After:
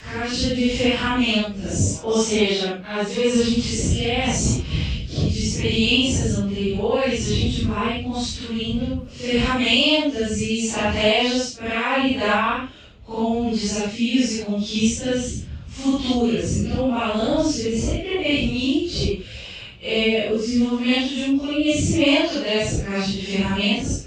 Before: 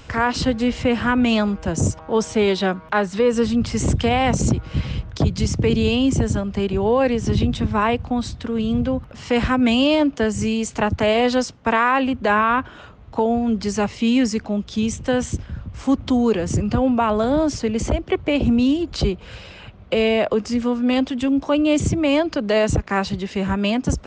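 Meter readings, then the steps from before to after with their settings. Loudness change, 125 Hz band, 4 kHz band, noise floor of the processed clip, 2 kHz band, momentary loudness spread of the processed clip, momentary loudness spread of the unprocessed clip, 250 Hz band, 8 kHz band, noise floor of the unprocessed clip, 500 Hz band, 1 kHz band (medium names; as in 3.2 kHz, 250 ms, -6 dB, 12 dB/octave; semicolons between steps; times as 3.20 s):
-1.0 dB, -1.5 dB, +6.0 dB, -37 dBFS, +0.5 dB, 8 LU, 7 LU, -2.0 dB, +4.0 dB, -42 dBFS, -2.5 dB, -5.0 dB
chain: phase randomisation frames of 200 ms; rotary cabinet horn 0.8 Hz; resonant high shelf 2.1 kHz +7 dB, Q 1.5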